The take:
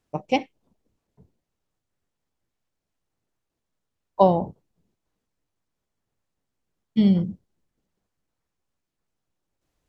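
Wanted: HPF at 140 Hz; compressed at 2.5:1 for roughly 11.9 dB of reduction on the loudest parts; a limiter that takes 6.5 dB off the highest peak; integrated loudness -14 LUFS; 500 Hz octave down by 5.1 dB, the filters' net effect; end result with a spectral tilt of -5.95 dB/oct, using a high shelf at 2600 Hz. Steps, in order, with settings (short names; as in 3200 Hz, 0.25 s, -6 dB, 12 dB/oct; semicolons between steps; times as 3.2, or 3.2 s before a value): HPF 140 Hz; bell 500 Hz -6.5 dB; high shelf 2600 Hz +7 dB; compressor 2.5:1, threshold -34 dBFS; gain +24 dB; limiter -0.5 dBFS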